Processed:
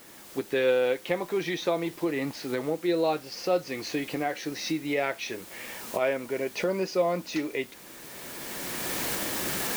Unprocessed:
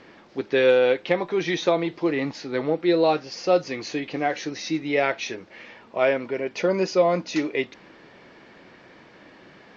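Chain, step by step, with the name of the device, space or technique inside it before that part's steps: cheap recorder with automatic gain (white noise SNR 22 dB; recorder AGC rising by 15 dB/s); trim -6 dB

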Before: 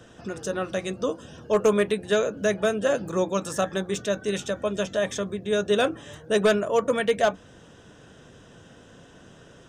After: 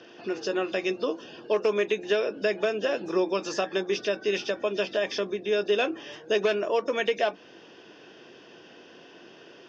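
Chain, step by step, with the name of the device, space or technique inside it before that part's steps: hearing aid with frequency lowering (knee-point frequency compression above 3.5 kHz 1.5:1; compression 4:1, threshold -23 dBFS, peak gain reduction 7 dB; cabinet simulation 340–6200 Hz, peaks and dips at 350 Hz +8 dB, 540 Hz -3 dB, 1.3 kHz -5 dB, 2.6 kHz +7 dB); trim +2 dB

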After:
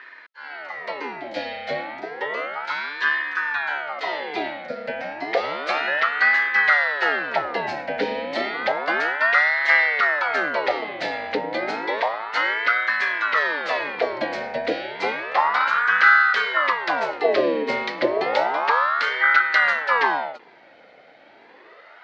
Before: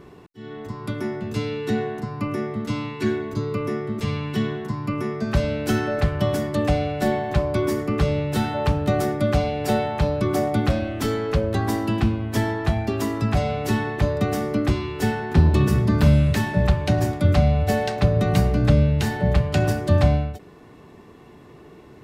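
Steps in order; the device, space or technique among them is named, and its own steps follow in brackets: voice changer toy (ring modulator with a swept carrier 880 Hz, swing 60%, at 0.31 Hz; cabinet simulation 430–4600 Hz, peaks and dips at 780 Hz -4 dB, 1.1 kHz -9 dB, 2 kHz +10 dB, 4.3 kHz +5 dB); trim +3.5 dB

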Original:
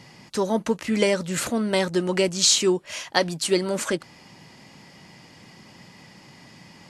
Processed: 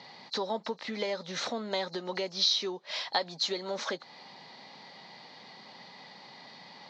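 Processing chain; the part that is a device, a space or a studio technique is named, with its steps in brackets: hearing aid with frequency lowering (knee-point frequency compression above 4 kHz 1.5:1; compression 4:1, threshold -29 dBFS, peak gain reduction 11.5 dB; cabinet simulation 310–5200 Hz, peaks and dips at 320 Hz -9 dB, 810 Hz +5 dB, 1.5 kHz -3 dB, 2.7 kHz -7 dB, 3.9 kHz +10 dB)

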